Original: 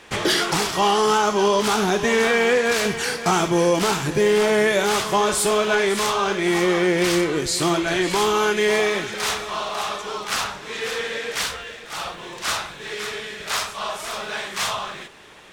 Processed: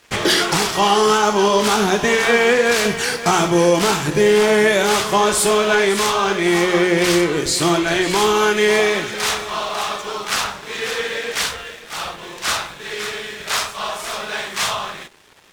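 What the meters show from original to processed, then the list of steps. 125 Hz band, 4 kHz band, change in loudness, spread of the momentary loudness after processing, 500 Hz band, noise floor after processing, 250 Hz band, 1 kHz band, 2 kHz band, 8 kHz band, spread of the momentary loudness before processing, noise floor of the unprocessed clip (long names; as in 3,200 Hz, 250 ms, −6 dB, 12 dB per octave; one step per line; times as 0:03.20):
+3.5 dB, +4.0 dB, +4.0 dB, 12 LU, +3.5 dB, −38 dBFS, +3.5 dB, +3.5 dB, +4.0 dB, +4.0 dB, 11 LU, −39 dBFS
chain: hum removal 45.22 Hz, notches 32
dead-zone distortion −46 dBFS
level +4.5 dB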